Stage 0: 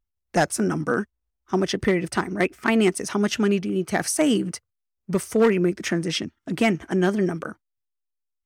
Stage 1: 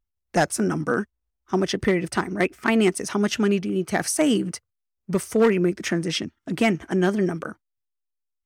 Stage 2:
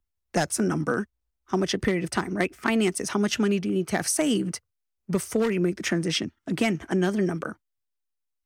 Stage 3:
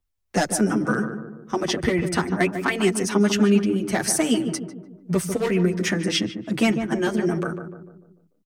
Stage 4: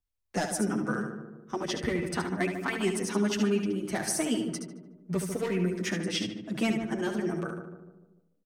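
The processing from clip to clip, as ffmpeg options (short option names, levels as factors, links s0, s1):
-af anull
-filter_complex "[0:a]acrossover=split=150|3000[s0][s1][s2];[s1]acompressor=threshold=0.0891:ratio=6[s3];[s0][s3][s2]amix=inputs=3:normalize=0"
-filter_complex "[0:a]asplit=2[s0][s1];[s1]adelay=148,lowpass=f=1100:p=1,volume=0.447,asplit=2[s2][s3];[s3]adelay=148,lowpass=f=1100:p=1,volume=0.51,asplit=2[s4][s5];[s5]adelay=148,lowpass=f=1100:p=1,volume=0.51,asplit=2[s6][s7];[s7]adelay=148,lowpass=f=1100:p=1,volume=0.51,asplit=2[s8][s9];[s9]adelay=148,lowpass=f=1100:p=1,volume=0.51,asplit=2[s10][s11];[s11]adelay=148,lowpass=f=1100:p=1,volume=0.51[s12];[s2][s4][s6][s8][s10][s12]amix=inputs=6:normalize=0[s13];[s0][s13]amix=inputs=2:normalize=0,asplit=2[s14][s15];[s15]adelay=7.9,afreqshift=0.36[s16];[s14][s16]amix=inputs=2:normalize=1,volume=2"
-af "aecho=1:1:72:0.422,volume=0.376"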